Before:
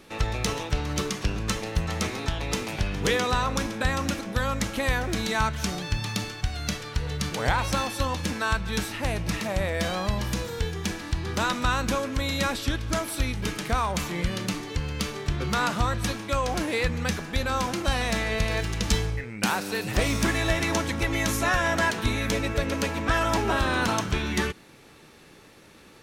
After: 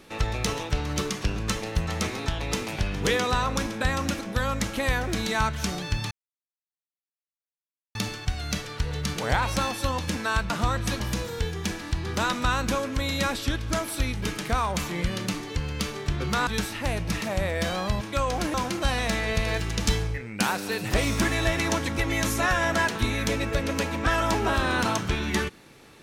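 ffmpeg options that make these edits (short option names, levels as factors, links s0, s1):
-filter_complex "[0:a]asplit=7[s0][s1][s2][s3][s4][s5][s6];[s0]atrim=end=6.11,asetpts=PTS-STARTPTS,afade=t=out:st=6.106:d=0.004:c=hsin,apad=pad_dur=1.84[s7];[s1]atrim=start=6.11:end=8.662,asetpts=PTS-STARTPTS,afade=t=in:d=0.004:c=hsin[s8];[s2]atrim=start=15.668:end=16.172[s9];[s3]atrim=start=10.198:end=15.672[s10];[s4]atrim=start=8.658:end=10.202[s11];[s5]atrim=start=16.168:end=16.702[s12];[s6]atrim=start=17.568[s13];[s7][s8]concat=n=2:v=0:a=1[s14];[s14][s9]acrossfade=d=0.004:c1=hsin:c2=hsin[s15];[s15][s10]acrossfade=d=0.004:c1=hsin:c2=hsin[s16];[s16][s11]acrossfade=d=0.004:c1=hsin:c2=hsin[s17];[s17][s12]acrossfade=d=0.004:c1=hsin:c2=hsin[s18];[s18][s13]acrossfade=d=0.004:c1=hsin:c2=hsin"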